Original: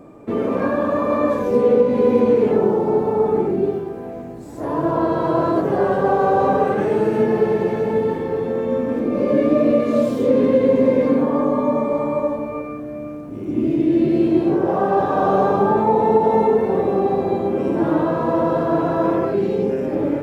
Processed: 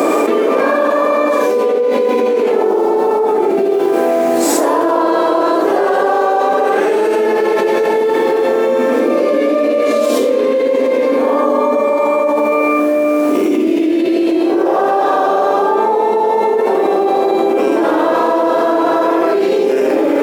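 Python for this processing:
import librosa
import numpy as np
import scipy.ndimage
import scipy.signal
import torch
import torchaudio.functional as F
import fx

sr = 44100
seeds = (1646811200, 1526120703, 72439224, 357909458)

p1 = scipy.signal.sosfilt(scipy.signal.butter(4, 320.0, 'highpass', fs=sr, output='sos'), x)
p2 = fx.high_shelf(p1, sr, hz=2300.0, db=9.5)
p3 = p2 + fx.echo_single(p2, sr, ms=84, db=-7.5, dry=0)
p4 = fx.env_flatten(p3, sr, amount_pct=100)
y = F.gain(torch.from_numpy(p4), -4.5).numpy()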